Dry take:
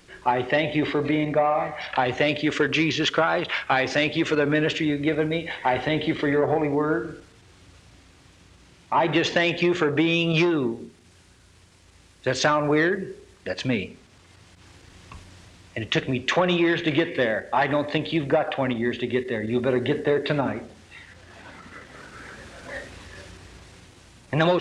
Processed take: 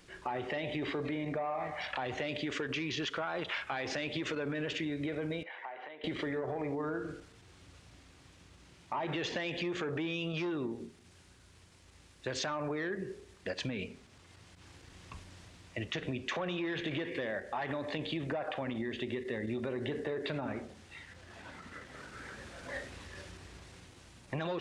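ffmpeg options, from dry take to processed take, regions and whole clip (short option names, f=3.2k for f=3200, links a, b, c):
-filter_complex "[0:a]asettb=1/sr,asplit=3[a][b][c];[a]atrim=end=5.434[d];[b]atrim=start=5.43:end=6.04,asetpts=PTS-STARTPTS,afade=t=in:d=0.004:c=qsin,afade=t=out:st=0.606:d=0.004:c=qsin,acompressor=threshold=-32dB:ratio=10:attack=3.2:release=140:knee=1:detection=peak,highpass=630,lowpass=2k[e];[c]atrim=start=6.036[f];[d][e]acrossfade=d=0.004:c1=hsin:c2=qsin[g];[g][f]acrossfade=d=0.004:c1=qsin:c2=hsin,alimiter=limit=-18dB:level=0:latency=1,acompressor=threshold=-27dB:ratio=6,volume=-5.5dB"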